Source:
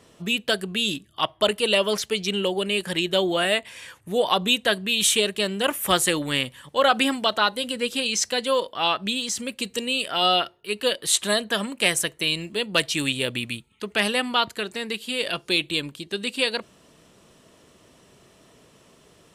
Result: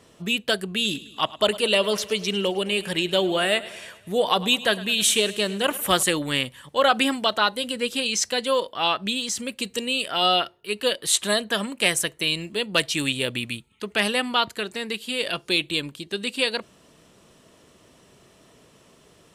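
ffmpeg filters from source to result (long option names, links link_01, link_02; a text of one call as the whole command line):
ffmpeg -i in.wav -filter_complex "[0:a]asettb=1/sr,asplit=3[link_01][link_02][link_03];[link_01]atrim=end=0.694[link_04];[link_02]atrim=start=0.69:end=6.03,asetpts=PTS-STARTPTS,afade=type=in:duration=0.004:curve=qsin,afade=type=out:start_time=5.336:duration=0.004:curve=qsin,aecho=1:1:105|210|315|420|525:0.126|0.0743|0.0438|0.0259|0.0153,atrim=end_sample=235494[link_05];[link_03]atrim=start=6.026[link_06];[link_04][link_05]acrossfade=duration=0.004:curve1=hsin:curve2=qsin[link_07];[link_07][link_06]acrossfade=duration=0.004:curve1=qsin:curve2=hsin" out.wav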